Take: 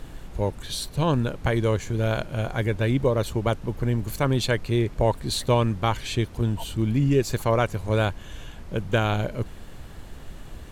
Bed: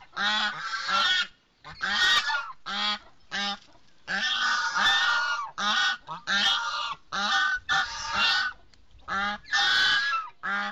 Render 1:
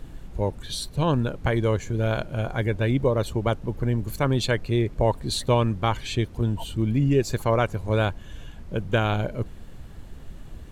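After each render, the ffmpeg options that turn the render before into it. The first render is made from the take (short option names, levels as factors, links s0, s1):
-af "afftdn=nr=6:nf=-41"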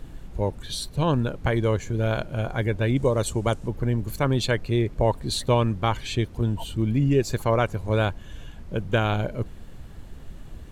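-filter_complex "[0:a]asettb=1/sr,asplit=3[s0][s1][s2];[s0]atrim=end=2.964[s3];[s1]atrim=start=2.96:end=3.68,asetpts=PTS-STARTPTS,afade=t=in:d=0.004:c=qsin,afade=t=out:st=0.716:d=0.004:c=qsin,equalizer=f=7900:w=1.1:g=12[s4];[s2]atrim=start=3.676[s5];[s3][s4]acrossfade=d=0.004:c1=hsin:c2=qsin[s6];[s6][s5]acrossfade=d=0.004:c1=qsin:c2=hsin"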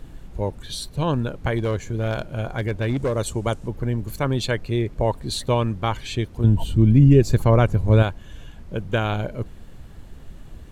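-filter_complex "[0:a]asettb=1/sr,asplit=3[s0][s1][s2];[s0]atrim=end=1.584[s3];[s1]atrim=start=1.58:end=3.14,asetpts=PTS-STARTPTS,afade=t=in:d=0.004:c=qsin,afade=t=out:st=1.556:d=0.004:c=qsin,volume=7.5,asoftclip=hard,volume=0.133[s4];[s2]atrim=start=3.136[s5];[s3][s4]acrossfade=d=0.004:c1=hsin:c2=qsin[s6];[s6][s5]acrossfade=d=0.004:c1=qsin:c2=hsin,asettb=1/sr,asplit=3[s7][s8][s9];[s7]atrim=end=6.444[s10];[s8]atrim=start=6.44:end=8.03,asetpts=PTS-STARTPTS,afade=t=in:d=0.004:c=qsin,afade=t=out:st=1.586:d=0.004:c=qsin,lowshelf=f=340:g=11[s11];[s9]atrim=start=8.026[s12];[s10][s11]acrossfade=d=0.004:c1=hsin:c2=qsin[s13];[s13][s12]acrossfade=d=0.004:c1=qsin:c2=hsin"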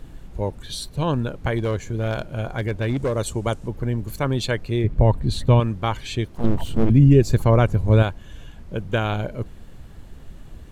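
-filter_complex "[0:a]asettb=1/sr,asplit=3[s0][s1][s2];[s0]atrim=end=4.844[s3];[s1]atrim=start=4.84:end=5.6,asetpts=PTS-STARTPTS,afade=t=in:d=0.004:c=qsin,afade=t=out:st=0.756:d=0.004:c=qsin,bass=f=250:g=10,treble=f=4000:g=-7[s4];[s2]atrim=start=5.596[s5];[s3][s4]acrossfade=d=0.004:c1=hsin:c2=qsin[s6];[s6][s5]acrossfade=d=0.004:c1=qsin:c2=hsin,asettb=1/sr,asplit=3[s7][s8][s9];[s7]atrim=end=6.314[s10];[s8]atrim=start=6.31:end=6.9,asetpts=PTS-STARTPTS,afade=t=in:d=0.004:c=qsin,afade=t=out:st=0.586:d=0.004:c=qsin,aeval=exprs='abs(val(0))':c=same[s11];[s9]atrim=start=6.896[s12];[s10][s11]acrossfade=d=0.004:c1=hsin:c2=qsin[s13];[s13][s12]acrossfade=d=0.004:c1=qsin:c2=hsin"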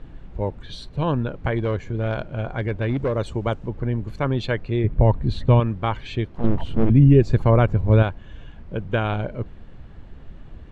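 -af "lowpass=3000"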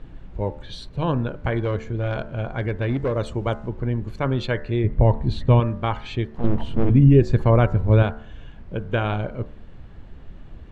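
-af "bandreject=f=73.98:t=h:w=4,bandreject=f=147.96:t=h:w=4,bandreject=f=221.94:t=h:w=4,bandreject=f=295.92:t=h:w=4,bandreject=f=369.9:t=h:w=4,bandreject=f=443.88:t=h:w=4,bandreject=f=517.86:t=h:w=4,bandreject=f=591.84:t=h:w=4,bandreject=f=665.82:t=h:w=4,bandreject=f=739.8:t=h:w=4,bandreject=f=813.78:t=h:w=4,bandreject=f=887.76:t=h:w=4,bandreject=f=961.74:t=h:w=4,bandreject=f=1035.72:t=h:w=4,bandreject=f=1109.7:t=h:w=4,bandreject=f=1183.68:t=h:w=4,bandreject=f=1257.66:t=h:w=4,bandreject=f=1331.64:t=h:w=4,bandreject=f=1405.62:t=h:w=4,bandreject=f=1479.6:t=h:w=4,bandreject=f=1553.58:t=h:w=4,bandreject=f=1627.56:t=h:w=4,bandreject=f=1701.54:t=h:w=4,bandreject=f=1775.52:t=h:w=4,bandreject=f=1849.5:t=h:w=4,bandreject=f=1923.48:t=h:w=4,bandreject=f=1997.46:t=h:w=4,bandreject=f=2071.44:t=h:w=4"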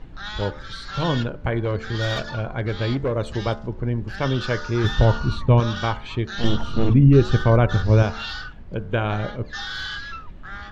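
-filter_complex "[1:a]volume=0.376[s0];[0:a][s0]amix=inputs=2:normalize=0"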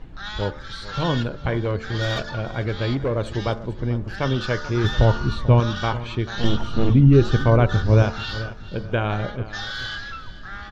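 -af "aecho=1:1:439|878|1317:0.158|0.0571|0.0205"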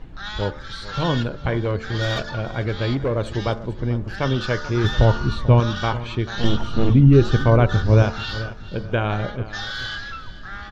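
-af "volume=1.12"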